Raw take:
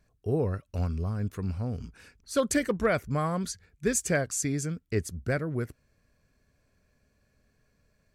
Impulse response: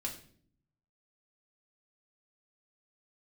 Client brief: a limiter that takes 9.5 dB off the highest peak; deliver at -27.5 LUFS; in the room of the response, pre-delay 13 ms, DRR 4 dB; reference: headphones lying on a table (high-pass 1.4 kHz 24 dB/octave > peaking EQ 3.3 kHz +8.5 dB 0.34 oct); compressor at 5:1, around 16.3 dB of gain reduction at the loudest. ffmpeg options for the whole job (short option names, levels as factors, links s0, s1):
-filter_complex "[0:a]acompressor=threshold=0.01:ratio=5,alimiter=level_in=4.73:limit=0.0631:level=0:latency=1,volume=0.211,asplit=2[s0][s1];[1:a]atrim=start_sample=2205,adelay=13[s2];[s1][s2]afir=irnorm=-1:irlink=0,volume=0.596[s3];[s0][s3]amix=inputs=2:normalize=0,highpass=f=1400:w=0.5412,highpass=f=1400:w=1.3066,equalizer=f=3300:t=o:w=0.34:g=8.5,volume=15.8"